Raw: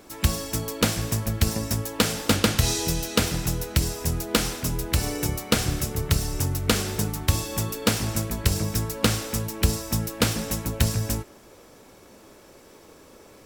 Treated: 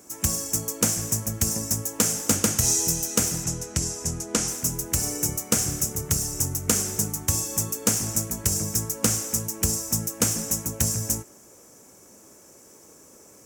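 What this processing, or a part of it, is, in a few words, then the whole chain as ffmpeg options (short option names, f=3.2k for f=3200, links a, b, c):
budget condenser microphone: -filter_complex "[0:a]asettb=1/sr,asplit=3[a][b][c];[a]atrim=end=3.444[d];[b]atrim=start=3.44:end=4.48,asetpts=PTS-STARTPTS,afade=t=in:d=0.004:c=qsin,afade=t=out:st=1.036:d=0.004:c=qsin,lowpass=7.8k[e];[c]atrim=start=4.476[f];[d][e]acrossfade=d=0.004:c1=hsin:c2=qsin[g];[g][f]acrossfade=d=0.004:c1=qsin:c2=hsin,highpass=f=92:p=1,equalizer=f=160:w=0.58:g=3.5,highshelf=f=5.1k:t=q:w=3:g=8.5,volume=-5dB"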